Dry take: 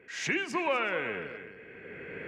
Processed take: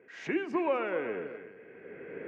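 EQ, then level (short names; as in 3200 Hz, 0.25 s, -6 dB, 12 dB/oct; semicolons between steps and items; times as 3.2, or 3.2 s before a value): band-pass 490 Hz, Q 0.59; dynamic EQ 320 Hz, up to +5 dB, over -47 dBFS, Q 1.3; 0.0 dB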